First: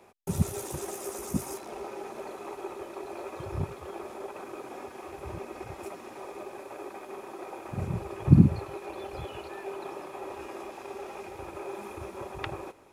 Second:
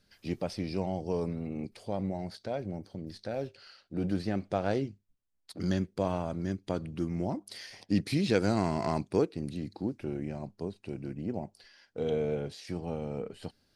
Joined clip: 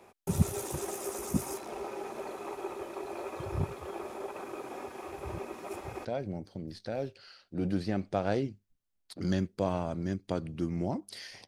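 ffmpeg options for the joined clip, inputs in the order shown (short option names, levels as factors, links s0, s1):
-filter_complex "[0:a]apad=whole_dur=11.47,atrim=end=11.47,asplit=2[s0][s1];[s0]atrim=end=5.542[s2];[s1]atrim=start=5.538:end=6.052,asetpts=PTS-STARTPTS,areverse[s3];[1:a]atrim=start=2.438:end=7.86[s4];[s2][s3]acrossfade=d=0.004:c1=hsin:c2=hsin[s5];[s5][s4]acrossfade=d=0.004:c1=hsin:c2=hsin"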